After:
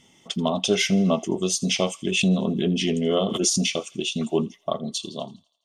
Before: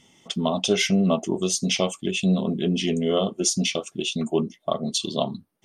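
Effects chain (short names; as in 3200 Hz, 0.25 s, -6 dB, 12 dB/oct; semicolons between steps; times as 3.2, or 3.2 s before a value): ending faded out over 1.09 s; thin delay 83 ms, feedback 55%, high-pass 1700 Hz, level -20 dB; 2.09–3.69 backwards sustainer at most 46 dB/s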